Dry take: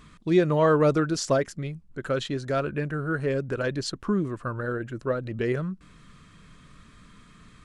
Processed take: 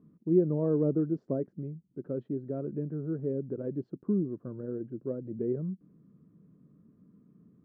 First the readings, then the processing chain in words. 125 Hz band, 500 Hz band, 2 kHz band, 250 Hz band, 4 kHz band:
-5.5 dB, -7.0 dB, under -30 dB, -3.0 dB, under -40 dB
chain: Butterworth band-pass 250 Hz, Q 0.9; trim -2.5 dB

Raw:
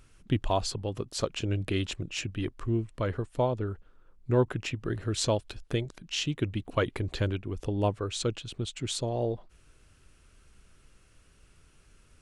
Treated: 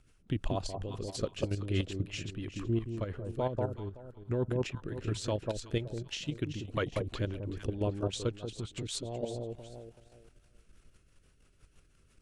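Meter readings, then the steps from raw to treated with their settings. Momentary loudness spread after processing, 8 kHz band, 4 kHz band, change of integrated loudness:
7 LU, -7.0 dB, -6.5 dB, -4.5 dB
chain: echo whose repeats swap between lows and highs 189 ms, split 950 Hz, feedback 51%, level -3 dB; level held to a coarse grid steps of 9 dB; rotary cabinet horn 6 Hz

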